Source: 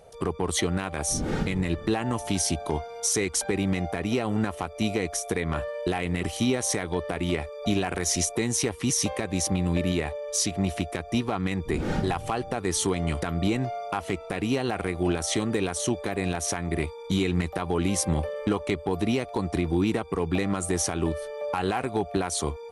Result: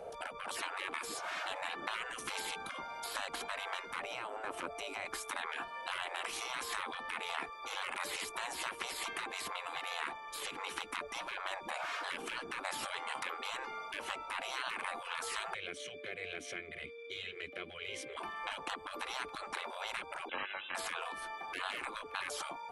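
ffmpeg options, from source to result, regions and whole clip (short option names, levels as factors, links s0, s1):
-filter_complex "[0:a]asettb=1/sr,asplit=3[s0][s1][s2];[s0]atrim=end=3.994[s3];[s1]atrim=start=3.99:end=5.06,asetpts=PTS-STARTPTS,afade=t=in:d=0.004:c=qsin,afade=t=out:st=1.066:d=0.004:c=qsin,equalizer=f=8100:t=o:w=0.2:g=5,acompressor=threshold=0.0282:ratio=4:attack=3.2:release=140:knee=1:detection=peak[s4];[s2]atrim=start=5.056[s5];[s3][s4]acrossfade=d=0.004:c1=hsin:c2=qsin[s6];[s6][s5]acrossfade=d=0.004:c1=qsin:c2=hsin,asettb=1/sr,asplit=3[s7][s8][s9];[s7]atrim=end=15.544[s10];[s8]atrim=start=15.54:end=18.17,asetpts=PTS-STARTPTS,afade=t=in:d=0.004:c=qsin,afade=t=out:st=2.626:d=0.004:c=qsin,highshelf=f=6700:g=9.5,acontrast=48,asplit=3[s11][s12][s13];[s11]bandpass=f=270:t=q:w=8,volume=1[s14];[s12]bandpass=f=2290:t=q:w=8,volume=0.501[s15];[s13]bandpass=f=3010:t=q:w=8,volume=0.355[s16];[s14][s15][s16]amix=inputs=3:normalize=0[s17];[s9]atrim=start=18.166[s18];[s10][s17]acrossfade=d=0.004:c1=hsin:c2=qsin[s19];[s19][s18]acrossfade=d=0.004:c1=qsin:c2=hsin,asettb=1/sr,asplit=3[s20][s21][s22];[s20]atrim=end=20.294[s23];[s21]atrim=start=20.29:end=20.75,asetpts=PTS-STARTPTS,afade=t=in:d=0.004:c=qsin,afade=t=out:st=0.456:d=0.004:c=qsin,lowshelf=f=250:g=10,aecho=1:1:3.3:0.32,atrim=end_sample=20286,lowpass=f=3300:t=q:w=0.5098,lowpass=f=3300:t=q:w=0.6013,lowpass=f=3300:t=q:w=0.9,lowpass=f=3300:t=q:w=2.563,afreqshift=-3900[s24];[s22]atrim=start=20.746[s25];[s23][s24]acrossfade=d=0.004:c1=hsin:c2=qsin[s26];[s26][s25]acrossfade=d=0.004:c1=qsin:c2=hsin,bandreject=f=1900:w=9,afftfilt=real='re*lt(hypot(re,im),0.0355)':imag='im*lt(hypot(re,im),0.0355)':win_size=1024:overlap=0.75,acrossover=split=240 2500:gain=0.2 1 0.251[s27][s28][s29];[s27][s28][s29]amix=inputs=3:normalize=0,volume=2.11"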